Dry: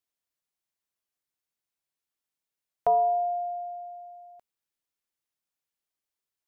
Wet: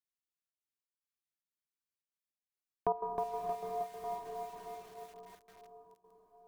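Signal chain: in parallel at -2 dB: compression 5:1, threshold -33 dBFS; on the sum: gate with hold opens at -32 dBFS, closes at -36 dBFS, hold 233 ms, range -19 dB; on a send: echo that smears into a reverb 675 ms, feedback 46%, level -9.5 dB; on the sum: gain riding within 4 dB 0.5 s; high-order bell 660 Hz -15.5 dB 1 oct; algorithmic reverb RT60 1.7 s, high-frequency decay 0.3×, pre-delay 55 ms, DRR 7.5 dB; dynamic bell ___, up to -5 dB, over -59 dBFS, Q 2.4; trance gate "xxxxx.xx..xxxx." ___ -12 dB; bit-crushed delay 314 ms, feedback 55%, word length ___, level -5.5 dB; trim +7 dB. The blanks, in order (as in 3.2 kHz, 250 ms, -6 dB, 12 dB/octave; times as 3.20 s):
350 Hz, 149 bpm, 10-bit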